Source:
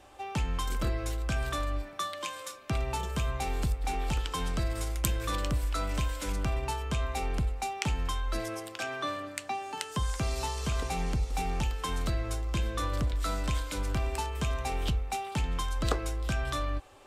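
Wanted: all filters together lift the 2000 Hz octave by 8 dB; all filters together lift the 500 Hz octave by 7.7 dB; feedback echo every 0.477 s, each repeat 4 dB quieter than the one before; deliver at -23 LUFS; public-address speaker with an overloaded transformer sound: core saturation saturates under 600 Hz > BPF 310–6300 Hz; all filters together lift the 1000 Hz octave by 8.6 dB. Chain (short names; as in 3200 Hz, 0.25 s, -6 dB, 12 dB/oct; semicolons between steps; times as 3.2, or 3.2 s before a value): bell 500 Hz +8 dB; bell 1000 Hz +6.5 dB; bell 2000 Hz +8 dB; feedback echo 0.477 s, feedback 63%, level -4 dB; core saturation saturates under 600 Hz; BPF 310–6300 Hz; gain +6 dB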